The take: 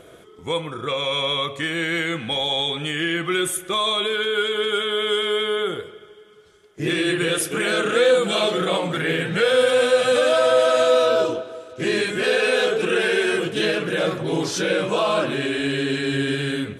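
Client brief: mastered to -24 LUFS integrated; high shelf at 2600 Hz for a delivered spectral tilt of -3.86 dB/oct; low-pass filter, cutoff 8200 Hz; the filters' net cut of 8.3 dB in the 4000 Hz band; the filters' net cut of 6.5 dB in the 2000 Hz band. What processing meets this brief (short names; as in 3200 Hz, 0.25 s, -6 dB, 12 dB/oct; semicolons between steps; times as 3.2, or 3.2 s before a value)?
LPF 8200 Hz; bell 2000 Hz -6.5 dB; high shelf 2600 Hz -3 dB; bell 4000 Hz -5.5 dB; gain -1 dB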